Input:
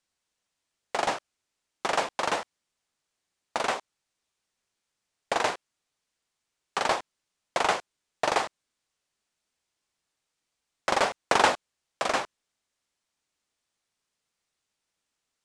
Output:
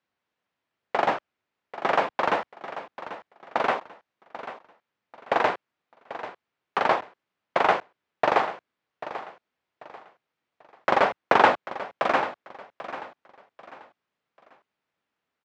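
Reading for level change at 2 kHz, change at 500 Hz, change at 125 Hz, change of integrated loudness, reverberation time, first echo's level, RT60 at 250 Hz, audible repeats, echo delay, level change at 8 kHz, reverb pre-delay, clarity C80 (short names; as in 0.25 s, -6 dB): +3.0 dB, +4.5 dB, +3.5 dB, +2.5 dB, none, -13.5 dB, none, 3, 0.79 s, under -10 dB, none, none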